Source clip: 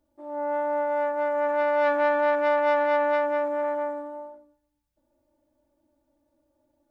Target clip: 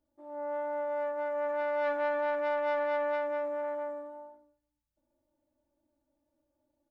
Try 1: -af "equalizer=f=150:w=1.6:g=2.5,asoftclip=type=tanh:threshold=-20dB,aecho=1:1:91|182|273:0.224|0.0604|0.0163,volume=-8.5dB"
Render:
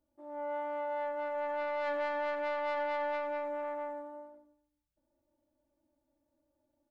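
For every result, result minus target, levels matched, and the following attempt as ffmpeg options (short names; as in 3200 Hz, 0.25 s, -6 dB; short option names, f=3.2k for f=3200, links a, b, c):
echo 38 ms late; soft clip: distortion +19 dB
-af "equalizer=f=150:w=1.6:g=2.5,asoftclip=type=tanh:threshold=-20dB,aecho=1:1:53|106|159:0.224|0.0604|0.0163,volume=-8.5dB"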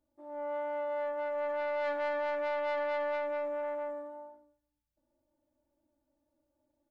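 soft clip: distortion +19 dB
-af "equalizer=f=150:w=1.6:g=2.5,asoftclip=type=tanh:threshold=-8.5dB,aecho=1:1:53|106|159:0.224|0.0604|0.0163,volume=-8.5dB"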